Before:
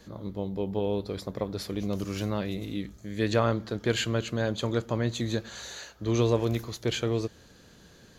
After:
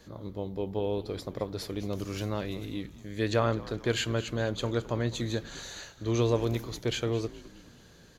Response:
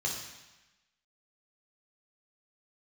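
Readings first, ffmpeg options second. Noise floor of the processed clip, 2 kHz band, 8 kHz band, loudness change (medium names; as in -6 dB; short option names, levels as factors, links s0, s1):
-55 dBFS, -1.5 dB, -1.5 dB, -2.0 dB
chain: -filter_complex "[0:a]equalizer=f=200:w=4.8:g=-5,asplit=2[s0][s1];[s1]asplit=4[s2][s3][s4][s5];[s2]adelay=211,afreqshift=-72,volume=0.126[s6];[s3]adelay=422,afreqshift=-144,volume=0.0631[s7];[s4]adelay=633,afreqshift=-216,volume=0.0316[s8];[s5]adelay=844,afreqshift=-288,volume=0.0157[s9];[s6][s7][s8][s9]amix=inputs=4:normalize=0[s10];[s0][s10]amix=inputs=2:normalize=0,volume=0.841"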